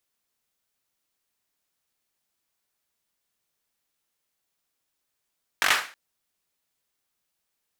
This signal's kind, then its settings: hand clap length 0.32 s, bursts 5, apart 21 ms, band 1.6 kHz, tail 0.38 s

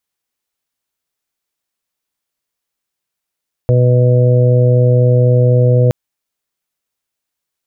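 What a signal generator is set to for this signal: steady additive tone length 2.22 s, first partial 124 Hz, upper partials -16.5/-15/-6/-14 dB, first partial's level -8 dB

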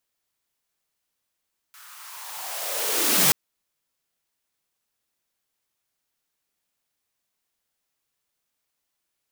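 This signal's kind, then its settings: swept filtered noise white, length 1.58 s highpass, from 1.3 kHz, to 110 Hz, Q 3.8, linear, gain ramp +32.5 dB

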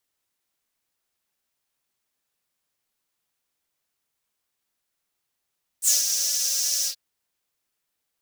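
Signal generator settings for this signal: synth patch with vibrato C#5, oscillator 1 triangle, interval -12 st, detune 11 cents, oscillator 2 level -7 dB, noise -16 dB, filter highpass, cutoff 4.4 kHz, Q 5, filter envelope 1 oct, filter decay 0.11 s, attack 62 ms, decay 0.14 s, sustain -7 dB, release 0.09 s, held 1.04 s, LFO 2.5 Hz, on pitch 55 cents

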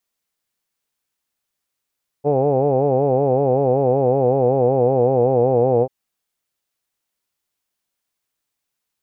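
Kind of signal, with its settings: formant vowel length 3.64 s, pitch 139 Hz, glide -2 st, vibrato depth 1.1 st, F1 480 Hz, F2 790 Hz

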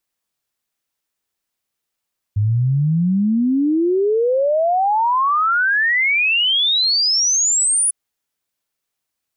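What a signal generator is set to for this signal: log sweep 100 Hz -> 10 kHz 5.55 s -13.5 dBFS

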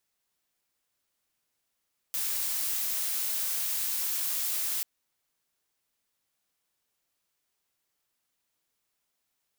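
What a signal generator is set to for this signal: noise blue, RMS -30.5 dBFS 2.69 s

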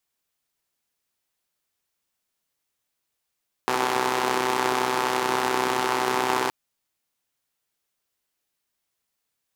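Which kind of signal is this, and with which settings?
four-cylinder engine model, steady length 2.82 s, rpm 3800, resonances 400/850 Hz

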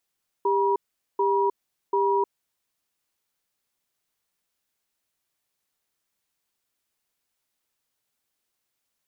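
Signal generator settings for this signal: cadence 398 Hz, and 962 Hz, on 0.31 s, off 0.43 s, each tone -22 dBFS 2.05 s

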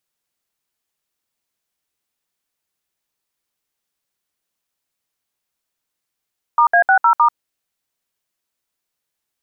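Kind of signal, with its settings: DTMF "*A60*", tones 90 ms, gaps 64 ms, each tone -11.5 dBFS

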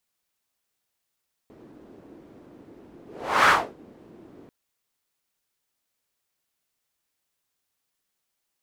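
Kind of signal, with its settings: whoosh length 2.99 s, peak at 1.98 s, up 0.46 s, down 0.30 s, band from 320 Hz, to 1.4 kHz, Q 2.2, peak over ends 32 dB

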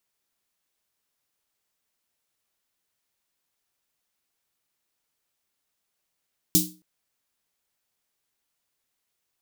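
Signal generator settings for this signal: snare drum length 0.27 s, tones 180 Hz, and 310 Hz, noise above 3.8 kHz, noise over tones 5 dB, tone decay 0.35 s, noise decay 0.27 s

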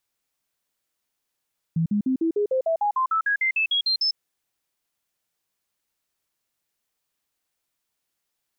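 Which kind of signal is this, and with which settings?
stepped sine 164 Hz up, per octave 3, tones 16, 0.10 s, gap 0.05 s -19 dBFS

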